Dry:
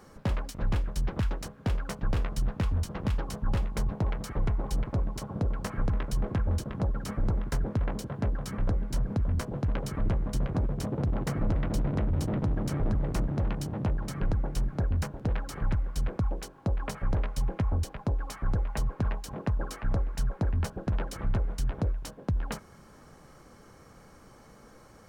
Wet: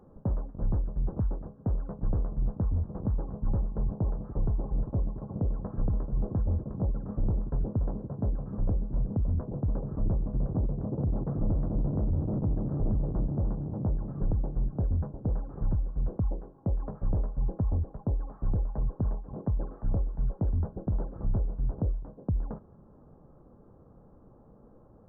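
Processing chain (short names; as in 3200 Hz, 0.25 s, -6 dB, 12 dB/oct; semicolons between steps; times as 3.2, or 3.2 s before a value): Gaussian blur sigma 9.8 samples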